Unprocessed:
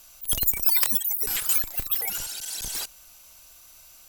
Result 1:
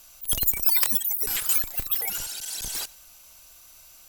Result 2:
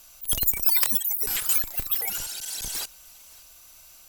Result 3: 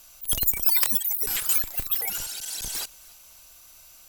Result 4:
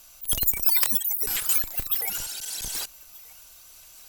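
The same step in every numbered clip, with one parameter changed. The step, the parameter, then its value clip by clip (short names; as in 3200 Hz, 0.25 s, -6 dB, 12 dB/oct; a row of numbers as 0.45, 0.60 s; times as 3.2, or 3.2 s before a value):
thinning echo, time: 93, 570, 289, 1232 ms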